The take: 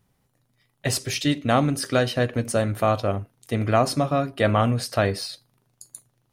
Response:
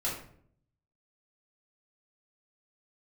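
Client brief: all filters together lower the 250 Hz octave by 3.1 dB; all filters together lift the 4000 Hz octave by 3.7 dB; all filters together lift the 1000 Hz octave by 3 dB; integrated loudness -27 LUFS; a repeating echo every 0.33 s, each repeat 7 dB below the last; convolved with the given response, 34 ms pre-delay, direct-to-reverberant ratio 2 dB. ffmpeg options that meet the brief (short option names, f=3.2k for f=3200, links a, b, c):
-filter_complex "[0:a]equalizer=f=250:t=o:g=-4,equalizer=f=1k:t=o:g=4.5,equalizer=f=4k:t=o:g=4.5,aecho=1:1:330|660|990|1320|1650:0.447|0.201|0.0905|0.0407|0.0183,asplit=2[a][b];[1:a]atrim=start_sample=2205,adelay=34[c];[b][c]afir=irnorm=-1:irlink=0,volume=-7.5dB[d];[a][d]amix=inputs=2:normalize=0,volume=-8dB"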